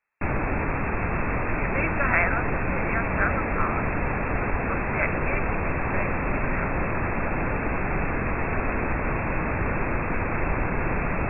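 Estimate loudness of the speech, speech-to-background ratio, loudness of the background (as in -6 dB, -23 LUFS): -30.0 LUFS, -3.0 dB, -27.0 LUFS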